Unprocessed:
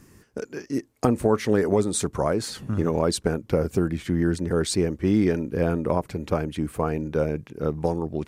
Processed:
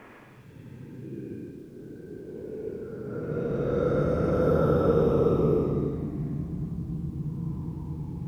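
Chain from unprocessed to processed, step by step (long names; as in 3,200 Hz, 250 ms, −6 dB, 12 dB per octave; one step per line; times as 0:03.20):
extreme stretch with random phases 24×, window 0.05 s, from 0:07.47
low-pass that shuts in the quiet parts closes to 1,200 Hz, open at −19 dBFS
background noise pink −66 dBFS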